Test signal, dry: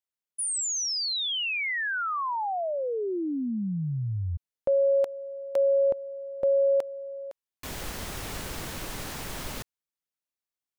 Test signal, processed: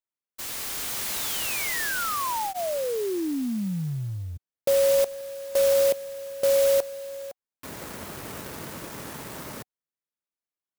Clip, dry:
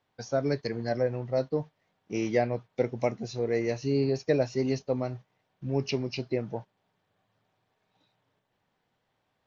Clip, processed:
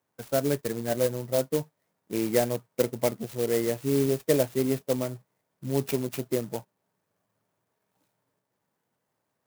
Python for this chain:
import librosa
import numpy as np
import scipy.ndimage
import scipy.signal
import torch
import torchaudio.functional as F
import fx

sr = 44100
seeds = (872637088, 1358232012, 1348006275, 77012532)

p1 = scipy.signal.sosfilt(scipy.signal.butter(2, 120.0, 'highpass', fs=sr, output='sos'), x)
p2 = fx.high_shelf(p1, sr, hz=5500.0, db=-7.0)
p3 = fx.notch(p2, sr, hz=750.0, q=12.0)
p4 = np.sign(p3) * np.maximum(np.abs(p3) - 10.0 ** (-45.5 / 20.0), 0.0)
p5 = p3 + F.gain(torch.from_numpy(p4), -4.5).numpy()
p6 = fx.clock_jitter(p5, sr, seeds[0], jitter_ms=0.077)
y = F.gain(torch.from_numpy(p6), -1.5).numpy()